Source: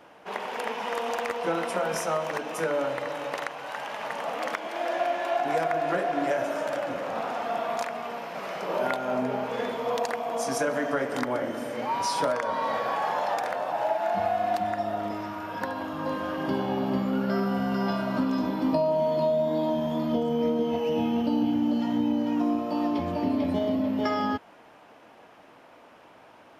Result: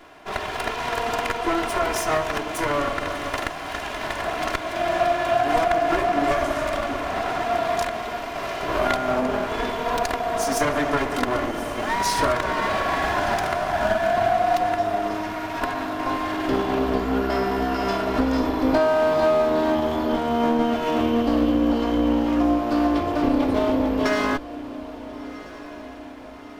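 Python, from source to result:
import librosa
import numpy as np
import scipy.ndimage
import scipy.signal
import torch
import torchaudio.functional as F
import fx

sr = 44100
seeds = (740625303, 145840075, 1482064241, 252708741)

y = fx.lower_of_two(x, sr, delay_ms=2.9)
y = fx.echo_diffused(y, sr, ms=1402, feedback_pct=52, wet_db=-16.0)
y = F.gain(torch.from_numpy(y), 6.5).numpy()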